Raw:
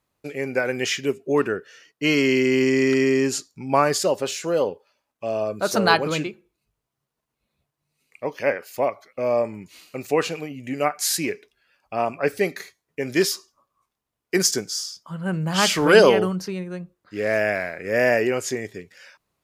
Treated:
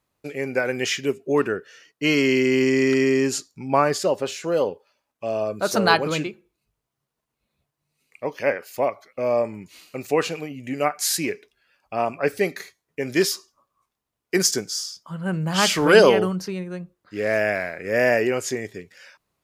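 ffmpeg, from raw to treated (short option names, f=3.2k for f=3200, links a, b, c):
-filter_complex "[0:a]asettb=1/sr,asplit=3[a][b][c];[a]atrim=end=3.674[d];[b]atrim=start=3.67:end=4.52,asetpts=PTS-STARTPTS,afade=t=in:d=0.004:c=qsin,afade=t=out:st=0.846:d=0.004:c=qsin,highshelf=f=4.2k:g=-6.5[e];[c]atrim=start=4.516[f];[d][e]acrossfade=d=0.004:c1=hsin:c2=qsin[g];[g][f]acrossfade=d=0.004:c1=qsin:c2=hsin"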